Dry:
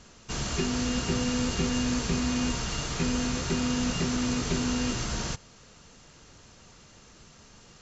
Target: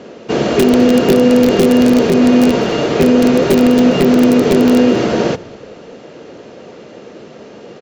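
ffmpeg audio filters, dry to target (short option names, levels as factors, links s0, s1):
-filter_complex "[0:a]highpass=330,lowpass=2800,aeval=exprs='(mod(16.8*val(0)+1,2)-1)/16.8':c=same,lowshelf=f=740:t=q:w=1.5:g=10.5,asplit=4[s0][s1][s2][s3];[s1]adelay=204,afreqshift=-48,volume=0.075[s4];[s2]adelay=408,afreqshift=-96,volume=0.0285[s5];[s3]adelay=612,afreqshift=-144,volume=0.0108[s6];[s0][s4][s5][s6]amix=inputs=4:normalize=0,alimiter=level_in=7.08:limit=0.891:release=50:level=0:latency=1,volume=0.891"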